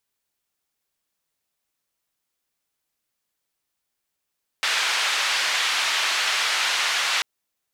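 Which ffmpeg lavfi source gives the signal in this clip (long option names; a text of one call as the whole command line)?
ffmpeg -f lavfi -i "anoisesrc=color=white:duration=2.59:sample_rate=44100:seed=1,highpass=frequency=1100,lowpass=frequency=3700,volume=-9.3dB" out.wav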